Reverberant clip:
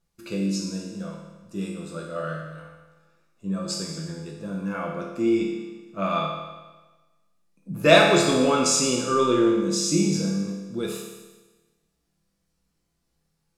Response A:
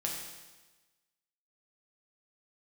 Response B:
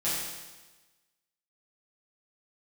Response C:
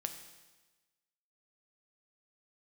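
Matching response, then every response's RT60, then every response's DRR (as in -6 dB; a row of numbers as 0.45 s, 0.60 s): A; 1.2 s, 1.2 s, 1.2 s; -2.0 dB, -11.5 dB, 6.0 dB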